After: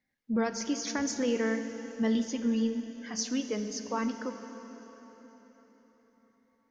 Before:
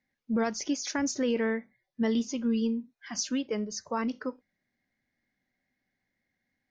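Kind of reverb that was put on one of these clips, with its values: plate-style reverb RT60 4.6 s, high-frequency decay 0.8×, DRR 7.5 dB; gain -1.5 dB

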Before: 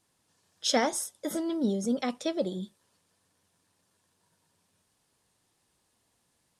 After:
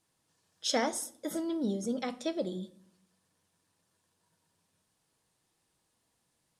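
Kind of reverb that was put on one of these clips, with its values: shoebox room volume 920 m³, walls furnished, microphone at 0.62 m; gain -4 dB

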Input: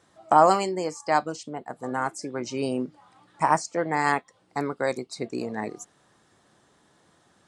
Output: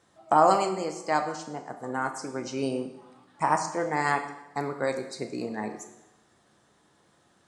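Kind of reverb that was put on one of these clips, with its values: plate-style reverb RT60 0.91 s, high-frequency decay 0.9×, DRR 5.5 dB; gain -3 dB

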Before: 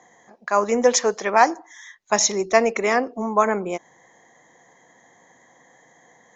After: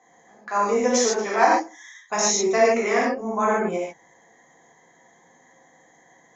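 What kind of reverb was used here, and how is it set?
non-linear reverb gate 0.17 s flat, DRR -7 dB; gain -9 dB

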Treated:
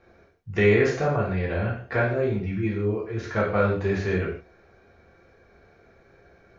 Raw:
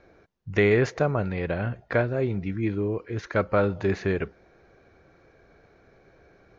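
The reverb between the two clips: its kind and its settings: non-linear reverb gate 0.19 s falling, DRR -5.5 dB; gain -5 dB

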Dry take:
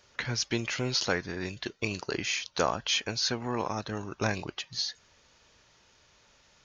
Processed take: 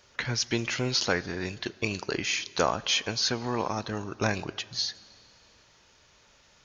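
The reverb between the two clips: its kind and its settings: plate-style reverb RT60 2.4 s, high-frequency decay 0.95×, DRR 19 dB; gain +2 dB

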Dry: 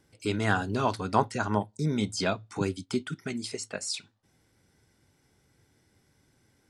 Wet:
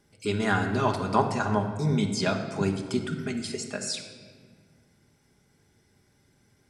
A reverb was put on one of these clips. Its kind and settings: shoebox room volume 2400 m³, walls mixed, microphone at 1.3 m

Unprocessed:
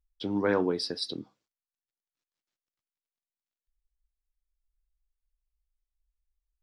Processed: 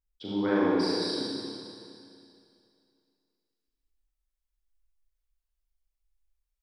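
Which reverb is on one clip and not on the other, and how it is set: Schroeder reverb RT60 2.5 s, combs from 29 ms, DRR -8 dB; gain -7 dB

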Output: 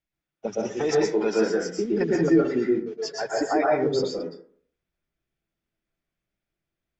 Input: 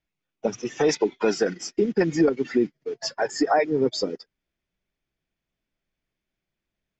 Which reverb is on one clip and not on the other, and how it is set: plate-style reverb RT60 0.53 s, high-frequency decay 0.35×, pre-delay 0.105 s, DRR -2.5 dB; gain -5.5 dB

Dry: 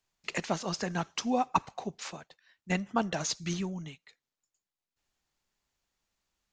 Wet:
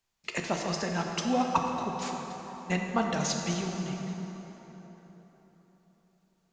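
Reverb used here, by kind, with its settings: plate-style reverb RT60 4.2 s, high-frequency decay 0.6×, DRR 1.5 dB

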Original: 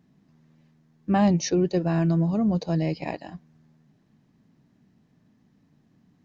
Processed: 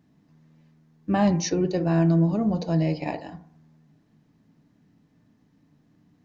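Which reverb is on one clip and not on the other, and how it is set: FDN reverb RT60 0.6 s, low-frequency decay 0.8×, high-frequency decay 0.3×, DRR 7 dB

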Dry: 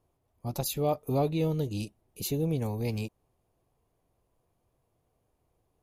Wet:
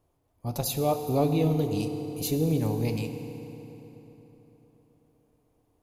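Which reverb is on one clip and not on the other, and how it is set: FDN reverb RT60 3.9 s, high-frequency decay 0.7×, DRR 6 dB; gain +2 dB

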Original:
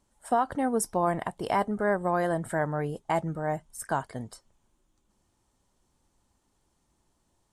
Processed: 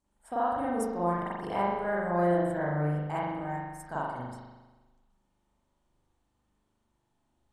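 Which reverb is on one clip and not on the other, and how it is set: spring tank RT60 1.2 s, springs 40 ms, chirp 25 ms, DRR -8.5 dB; gain -12 dB

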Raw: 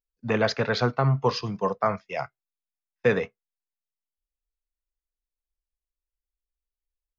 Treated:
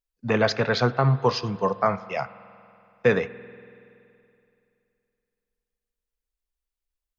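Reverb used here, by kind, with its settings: spring tank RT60 2.7 s, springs 47 ms, chirp 75 ms, DRR 16 dB; gain +2 dB

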